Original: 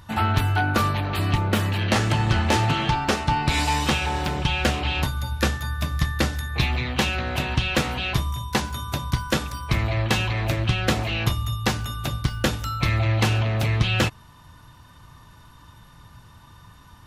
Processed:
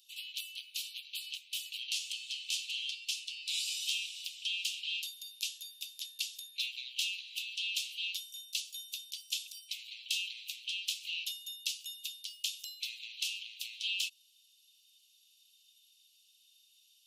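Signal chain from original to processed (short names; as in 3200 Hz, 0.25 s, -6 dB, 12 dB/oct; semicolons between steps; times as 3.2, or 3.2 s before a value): steep high-pass 2700 Hz 72 dB/oct; gain -5.5 dB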